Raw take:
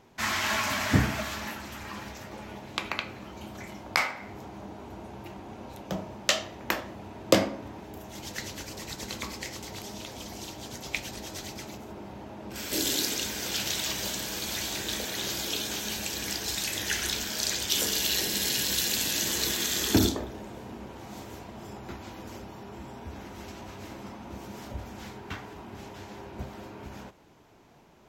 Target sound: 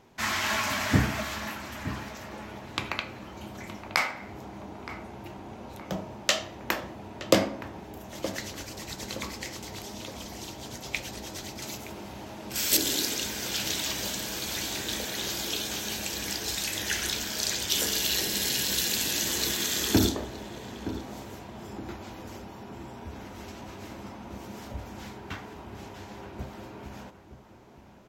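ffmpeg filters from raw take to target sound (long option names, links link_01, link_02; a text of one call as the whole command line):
ffmpeg -i in.wav -filter_complex "[0:a]asettb=1/sr,asplit=3[link_01][link_02][link_03];[link_01]atrim=end=11.624[link_04];[link_02]atrim=start=11.62:end=12.77,asetpts=PTS-STARTPTS,afade=type=in:duration=0.004:curve=qsin,afade=type=out:start_time=1.146:duration=0.004:curve=qsin,highshelf=frequency=2500:gain=12[link_05];[link_03]atrim=start=12.766[link_06];[link_04][link_05]acrossfade=duration=0.004:curve1=hsin:curve2=qsin[link_07];[link_07][link_06]acrossfade=duration=0.004:curve1=qsin:curve2=hsin,asplit=2[link_08][link_09];[link_09]adelay=919,lowpass=frequency=1700:poles=1,volume=-12dB,asplit=2[link_10][link_11];[link_11]adelay=919,lowpass=frequency=1700:poles=1,volume=0.46,asplit=2[link_12][link_13];[link_13]adelay=919,lowpass=frequency=1700:poles=1,volume=0.46,asplit=2[link_14][link_15];[link_15]adelay=919,lowpass=frequency=1700:poles=1,volume=0.46,asplit=2[link_16][link_17];[link_17]adelay=919,lowpass=frequency=1700:poles=1,volume=0.46[link_18];[link_08][link_10][link_12][link_14][link_16][link_18]amix=inputs=6:normalize=0" out.wav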